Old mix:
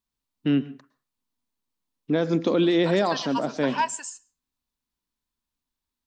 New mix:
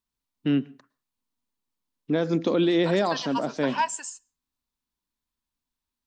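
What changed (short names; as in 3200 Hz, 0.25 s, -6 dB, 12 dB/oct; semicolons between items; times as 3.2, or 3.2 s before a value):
first voice: send -8.0 dB; second voice: send -6.5 dB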